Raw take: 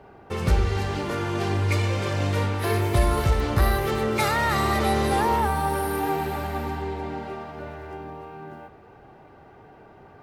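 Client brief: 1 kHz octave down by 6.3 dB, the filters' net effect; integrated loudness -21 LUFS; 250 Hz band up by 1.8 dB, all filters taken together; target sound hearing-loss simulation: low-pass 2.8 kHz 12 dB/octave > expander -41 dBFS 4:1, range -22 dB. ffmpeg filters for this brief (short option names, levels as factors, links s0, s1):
-af "lowpass=2800,equalizer=f=250:t=o:g=3,equalizer=f=1000:t=o:g=-8.5,agate=range=0.0794:threshold=0.00891:ratio=4,volume=1.68"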